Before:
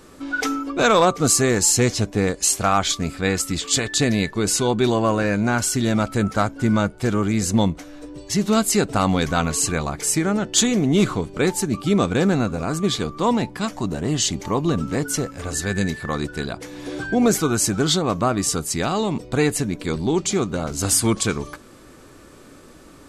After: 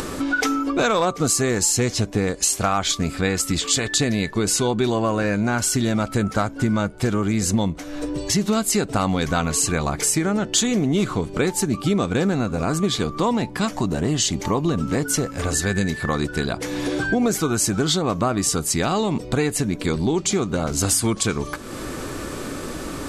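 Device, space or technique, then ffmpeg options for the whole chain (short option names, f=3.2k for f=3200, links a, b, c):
upward and downward compression: -af "acompressor=mode=upward:threshold=-23dB:ratio=2.5,acompressor=threshold=-22dB:ratio=4,volume=4.5dB"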